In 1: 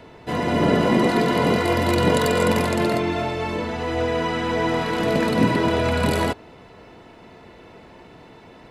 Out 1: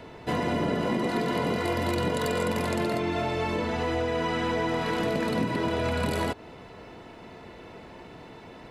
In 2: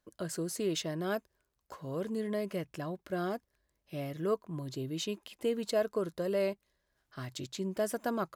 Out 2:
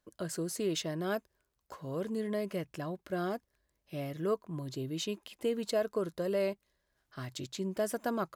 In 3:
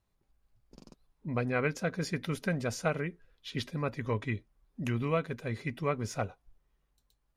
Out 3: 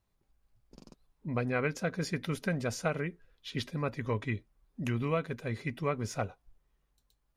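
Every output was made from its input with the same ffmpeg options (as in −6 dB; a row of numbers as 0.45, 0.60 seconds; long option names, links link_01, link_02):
-af "acompressor=threshold=-24dB:ratio=6"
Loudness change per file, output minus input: −7.0, 0.0, −0.5 LU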